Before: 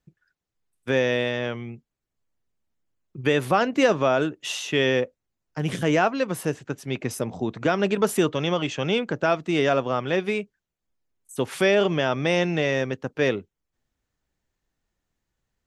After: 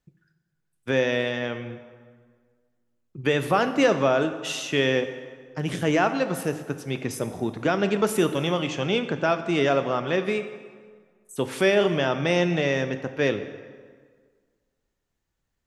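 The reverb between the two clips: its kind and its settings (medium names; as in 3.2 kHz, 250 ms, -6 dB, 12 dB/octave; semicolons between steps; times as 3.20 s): plate-style reverb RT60 1.7 s, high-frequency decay 0.7×, DRR 9 dB; trim -1 dB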